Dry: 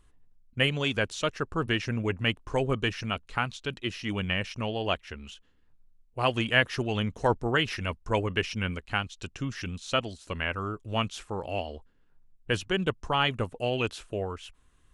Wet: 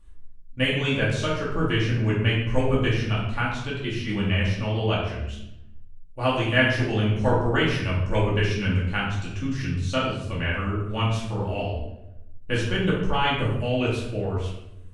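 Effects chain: bass shelf 150 Hz +6 dB; simulated room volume 250 m³, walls mixed, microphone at 2.4 m; trim -5 dB

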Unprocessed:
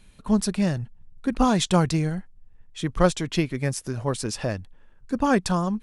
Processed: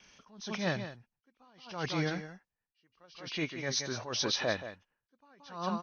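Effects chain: knee-point frequency compression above 2.1 kHz 1.5:1; high-pass 840 Hz 6 dB/octave; gate with hold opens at -55 dBFS; delay 176 ms -12.5 dB; attacks held to a fixed rise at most 100 dB/s; trim +4 dB

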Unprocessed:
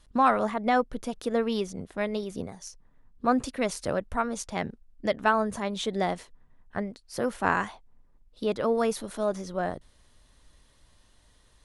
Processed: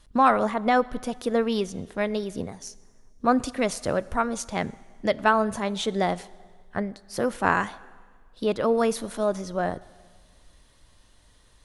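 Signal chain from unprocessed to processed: plate-style reverb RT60 1.7 s, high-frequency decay 0.95×, DRR 19 dB; trim +3 dB

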